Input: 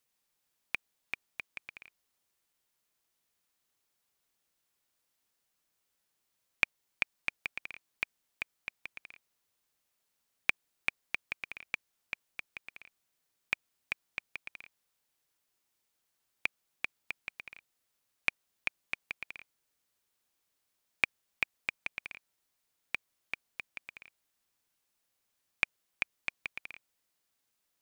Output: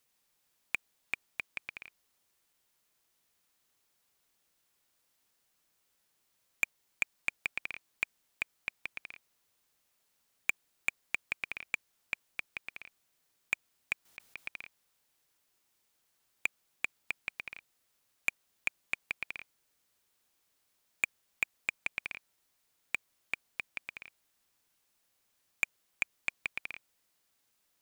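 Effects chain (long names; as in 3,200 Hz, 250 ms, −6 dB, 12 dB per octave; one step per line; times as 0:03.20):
0:14.05–0:14.47: compressor whose output falls as the input rises −49 dBFS, ratio −1
soft clipping −20.5 dBFS, distortion −8 dB
level +4.5 dB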